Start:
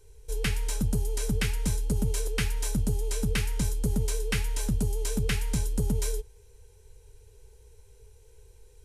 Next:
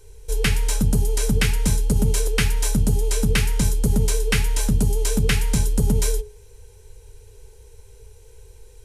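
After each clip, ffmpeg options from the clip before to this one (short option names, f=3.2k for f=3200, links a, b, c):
-af "bandreject=f=60:t=h:w=6,bandreject=f=120:t=h:w=6,bandreject=f=180:t=h:w=6,bandreject=f=240:t=h:w=6,bandreject=f=300:t=h:w=6,bandreject=f=360:t=h:w=6,bandreject=f=420:t=h:w=6,volume=8.5dB"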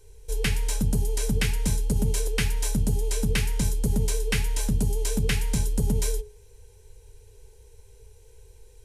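-af "equalizer=f=1.3k:t=o:w=0.3:g=-5,volume=-5dB"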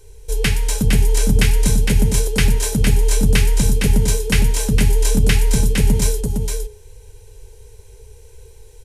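-af "aecho=1:1:460:0.596,volume=7.5dB"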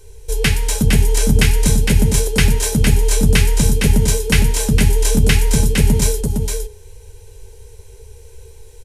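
-filter_complex "[0:a]asplit=2[a][b];[b]adelay=13,volume=-12dB[c];[a][c]amix=inputs=2:normalize=0,volume=2.5dB"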